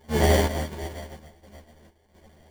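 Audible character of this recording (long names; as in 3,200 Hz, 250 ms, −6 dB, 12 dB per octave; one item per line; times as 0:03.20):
a buzz of ramps at a fixed pitch in blocks of 32 samples
chopped level 1.4 Hz, depth 65%, duty 65%
aliases and images of a low sample rate 1,300 Hz, jitter 0%
a shimmering, thickened sound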